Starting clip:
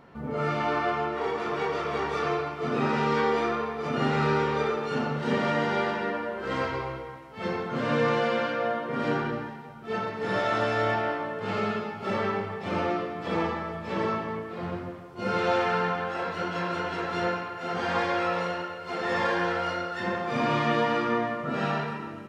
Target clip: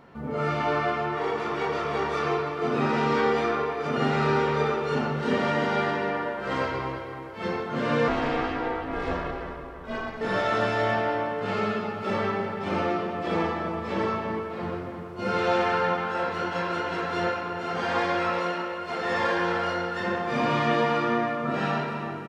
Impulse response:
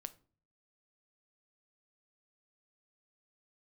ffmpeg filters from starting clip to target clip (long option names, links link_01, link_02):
-filter_complex "[0:a]bandreject=frequency=60:width_type=h:width=6,bandreject=frequency=120:width_type=h:width=6,bandreject=frequency=180:width_type=h:width=6,asettb=1/sr,asplit=3[link_01][link_02][link_03];[link_01]atrim=end=8.084[link_04];[link_02]atrim=start=8.08:end=10.21,asetpts=PTS-STARTPTS,afade=type=in:duration=0.004:curve=qsin,afade=type=out:start_time=2.126:duration=0.004:curve=qsin,aeval=exprs='val(0)*sin(2*PI*210*n/s)':channel_layout=same[link_05];[link_03]atrim=start=10.206[link_06];[link_04][link_05]acrossfade=duration=0.004:curve1=hsin:curve2=qsin[link_07];[link_07][link_06]acrossfade=duration=0.004:curve1=qsin:curve2=hsin,asplit=2[link_08][link_09];[link_09]adelay=329,lowpass=frequency=2400:poles=1,volume=-8dB,asplit=2[link_10][link_11];[link_11]adelay=329,lowpass=frequency=2400:poles=1,volume=0.46,asplit=2[link_12][link_13];[link_13]adelay=329,lowpass=frequency=2400:poles=1,volume=0.46,asplit=2[link_14][link_15];[link_15]adelay=329,lowpass=frequency=2400:poles=1,volume=0.46,asplit=2[link_16][link_17];[link_17]adelay=329,lowpass=frequency=2400:poles=1,volume=0.46[link_18];[link_08][link_10][link_12][link_14][link_16][link_18]amix=inputs=6:normalize=0,volume=1dB"